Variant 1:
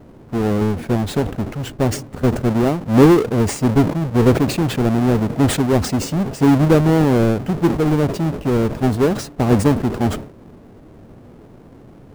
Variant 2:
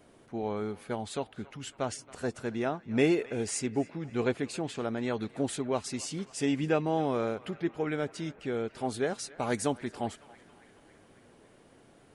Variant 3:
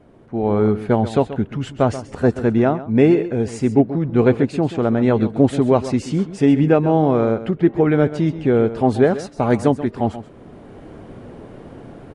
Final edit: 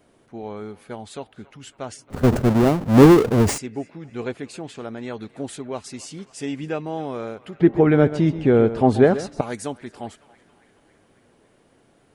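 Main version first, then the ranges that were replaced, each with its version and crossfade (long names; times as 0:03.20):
2
0:02.10–0:03.58: punch in from 1
0:07.60–0:09.41: punch in from 3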